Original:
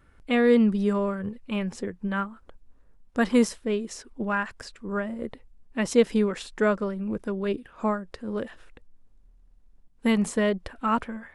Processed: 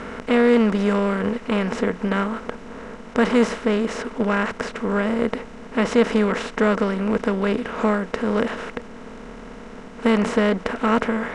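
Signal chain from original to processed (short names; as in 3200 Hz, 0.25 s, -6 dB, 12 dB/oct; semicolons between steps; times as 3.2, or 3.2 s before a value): per-bin compression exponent 0.4; air absorption 82 m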